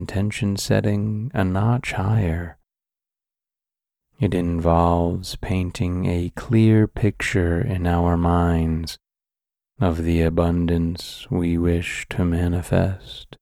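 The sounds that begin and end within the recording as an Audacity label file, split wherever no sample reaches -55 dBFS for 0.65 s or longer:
4.130000	8.970000	sound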